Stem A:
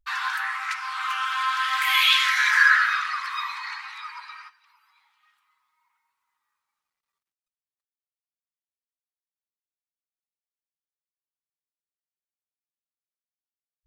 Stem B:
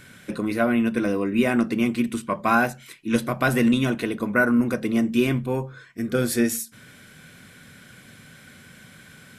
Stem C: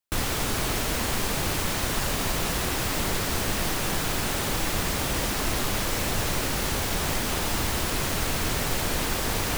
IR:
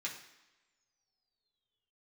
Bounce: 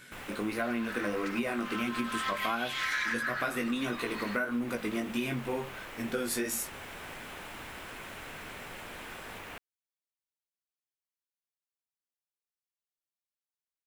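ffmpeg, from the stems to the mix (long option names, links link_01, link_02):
-filter_complex "[0:a]adelay=550,volume=-4.5dB[link_01];[1:a]flanger=delay=16:depth=4.4:speed=1.5,volume=0dB,asplit=2[link_02][link_03];[2:a]highshelf=frequency=3500:width_type=q:width=1.5:gain=-9.5,volume=-14dB[link_04];[link_03]apad=whole_len=635564[link_05];[link_01][link_05]sidechaincompress=threshold=-27dB:ratio=8:attack=16:release=363[link_06];[link_06][link_02][link_04]amix=inputs=3:normalize=0,lowshelf=frequency=230:gain=-11.5,acompressor=threshold=-28dB:ratio=10"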